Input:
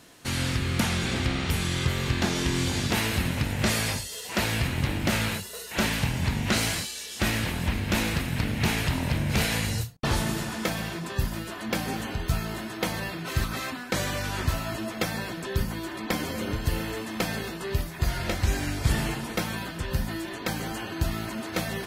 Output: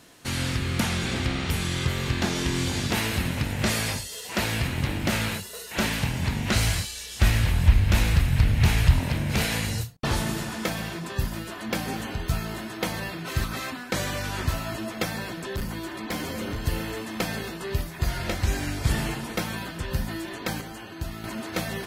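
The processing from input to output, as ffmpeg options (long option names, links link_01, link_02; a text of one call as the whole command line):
ffmpeg -i in.wav -filter_complex "[0:a]asplit=3[link_01][link_02][link_03];[link_01]afade=type=out:start_time=6.53:duration=0.02[link_04];[link_02]asubboost=boost=6.5:cutoff=95,afade=type=in:start_time=6.53:duration=0.02,afade=type=out:start_time=8.99:duration=0.02[link_05];[link_03]afade=type=in:start_time=8.99:duration=0.02[link_06];[link_04][link_05][link_06]amix=inputs=3:normalize=0,asettb=1/sr,asplit=3[link_07][link_08][link_09];[link_07]atrim=end=15.114[link_10];[link_08]atrim=start=15.11:end=16.63,asetpts=PTS-STARTPTS,afade=type=in:duration=0.004:curve=qsin,afade=type=out:start_time=1.516:duration=0.004:curve=qsin,asoftclip=type=hard:threshold=-25.5dB[link_11];[link_09]atrim=start=16.626[link_12];[link_10][link_11]acrossfade=duration=0.004:curve1=hsin:curve2=qsin[link_13];[link_13][link_12]acrossfade=duration=0.004:curve1=qsin:curve2=hsin,asplit=3[link_14][link_15][link_16];[link_14]atrim=end=20.612[link_17];[link_15]atrim=start=20.608:end=21.242,asetpts=PTS-STARTPTS,volume=-6dB[link_18];[link_16]atrim=start=21.238[link_19];[link_17][link_18]acrossfade=duration=0.004:curve1=hsin:curve2=hsin[link_20];[link_20][link_19]acrossfade=duration=0.004:curve1=hsin:curve2=hsin" out.wav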